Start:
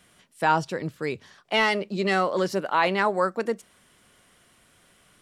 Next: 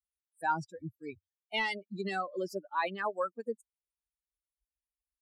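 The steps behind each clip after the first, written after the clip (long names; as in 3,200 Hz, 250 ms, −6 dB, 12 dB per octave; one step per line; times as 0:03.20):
spectral dynamics exaggerated over time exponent 3
parametric band 6,100 Hz −3.5 dB 0.31 octaves
level −5.5 dB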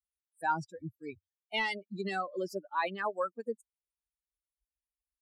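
no processing that can be heard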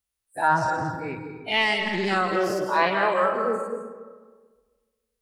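every bin's largest magnitude spread in time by 120 ms
on a send at −4.5 dB: convolution reverb RT60 1.5 s, pre-delay 120 ms
on the sum: highs frequency-modulated by the lows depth 0.15 ms
level +5.5 dB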